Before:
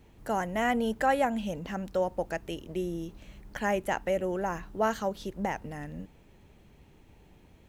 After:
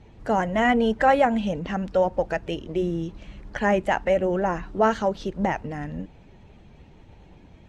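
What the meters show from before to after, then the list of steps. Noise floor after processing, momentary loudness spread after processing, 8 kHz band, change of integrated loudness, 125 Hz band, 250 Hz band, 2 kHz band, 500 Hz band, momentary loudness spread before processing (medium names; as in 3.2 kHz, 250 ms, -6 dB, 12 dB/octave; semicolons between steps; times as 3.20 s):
-51 dBFS, 13 LU, no reading, +7.0 dB, +8.0 dB, +7.5 dB, +6.5 dB, +7.5 dB, 13 LU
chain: coarse spectral quantiser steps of 15 dB; distance through air 100 m; trim +8 dB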